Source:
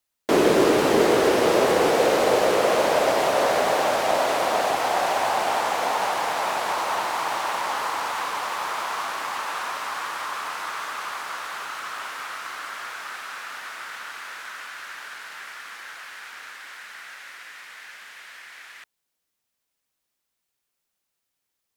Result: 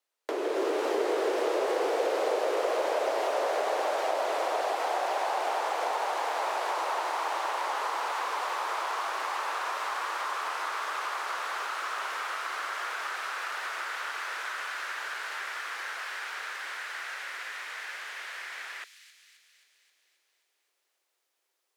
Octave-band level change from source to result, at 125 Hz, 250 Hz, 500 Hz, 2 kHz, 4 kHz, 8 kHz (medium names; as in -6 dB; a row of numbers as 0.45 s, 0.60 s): under -40 dB, -13.0 dB, -8.0 dB, -4.5 dB, -7.5 dB, -9.0 dB